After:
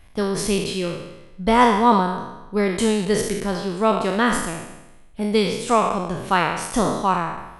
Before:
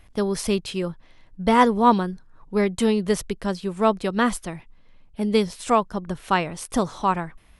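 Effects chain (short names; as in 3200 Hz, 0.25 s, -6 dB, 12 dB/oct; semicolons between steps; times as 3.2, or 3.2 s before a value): spectral trails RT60 0.97 s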